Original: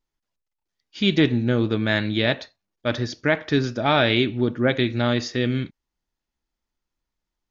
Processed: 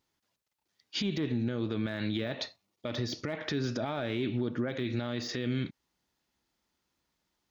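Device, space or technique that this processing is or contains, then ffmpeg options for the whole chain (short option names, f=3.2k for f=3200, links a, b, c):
broadcast voice chain: -filter_complex "[0:a]asettb=1/sr,asplit=3[a][b][c];[a]atrim=end=2.354[d];[b]atrim=start=2.35:end=3.38,asetpts=PTS-STARTPTS,afade=t=in:d=0.004:c=qsin,afade=t=out:st=1.026:d=0.004:c=qsin,bandreject=f=1.6k:w=5.1[e];[c]atrim=start=3.376[f];[d][e]acrossfade=d=0.004:c1=hsin:c2=qsin[g];[g][f]acrossfade=d=0.004:c1=qsin:c2=hsin,highpass=92,deesser=0.9,acompressor=threshold=-29dB:ratio=5,equalizer=f=4k:t=o:w=0.77:g=2,alimiter=level_in=5.5dB:limit=-24dB:level=0:latency=1:release=102,volume=-5.5dB,volume=6.5dB"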